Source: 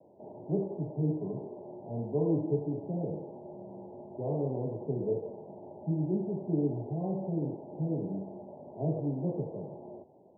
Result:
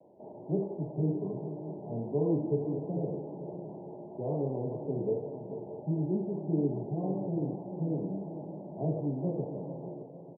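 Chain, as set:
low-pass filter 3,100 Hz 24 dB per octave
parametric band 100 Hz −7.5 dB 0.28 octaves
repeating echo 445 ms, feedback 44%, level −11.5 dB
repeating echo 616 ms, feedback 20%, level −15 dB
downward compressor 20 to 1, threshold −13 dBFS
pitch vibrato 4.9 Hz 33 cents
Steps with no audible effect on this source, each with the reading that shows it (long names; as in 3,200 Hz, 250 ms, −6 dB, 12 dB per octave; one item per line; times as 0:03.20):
low-pass filter 3,100 Hz: nothing at its input above 910 Hz
downward compressor, threshold −13 dBFS: peak of its input −17.0 dBFS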